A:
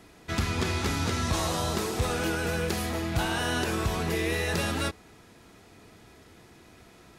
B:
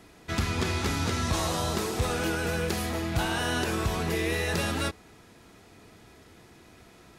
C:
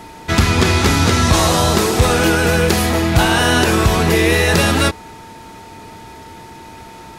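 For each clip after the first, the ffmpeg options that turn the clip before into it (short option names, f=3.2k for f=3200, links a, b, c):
-af anull
-af "aeval=exprs='val(0)+0.00251*sin(2*PI*900*n/s)':c=same,acontrast=57,volume=8.5dB"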